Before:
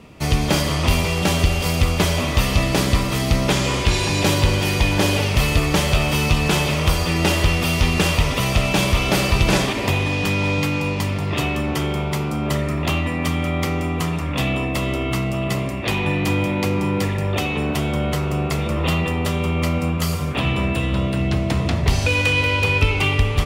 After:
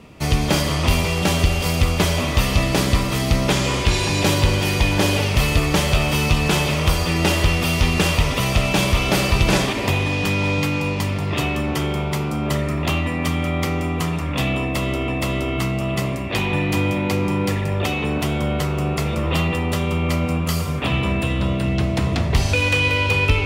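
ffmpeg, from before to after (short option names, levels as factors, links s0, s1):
-filter_complex "[0:a]asplit=2[s0][s1];[s0]atrim=end=15.082[s2];[s1]atrim=start=14.608[s3];[s2][s3]acrossfade=d=0.004:c1=hsin:c2=hsin"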